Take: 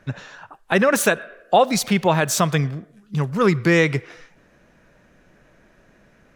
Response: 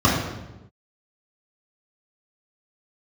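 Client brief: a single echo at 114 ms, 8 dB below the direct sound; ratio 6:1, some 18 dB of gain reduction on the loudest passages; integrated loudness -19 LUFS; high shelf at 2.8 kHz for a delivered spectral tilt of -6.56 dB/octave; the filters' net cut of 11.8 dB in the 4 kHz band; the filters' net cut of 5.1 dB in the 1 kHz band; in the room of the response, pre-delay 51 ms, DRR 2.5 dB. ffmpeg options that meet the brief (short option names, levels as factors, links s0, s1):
-filter_complex "[0:a]equalizer=f=1000:t=o:g=-6,highshelf=f=2800:g=-8.5,equalizer=f=4000:t=o:g=-8,acompressor=threshold=0.02:ratio=6,aecho=1:1:114:0.398,asplit=2[s0][s1];[1:a]atrim=start_sample=2205,adelay=51[s2];[s1][s2]afir=irnorm=-1:irlink=0,volume=0.0631[s3];[s0][s3]amix=inputs=2:normalize=0,volume=5.01"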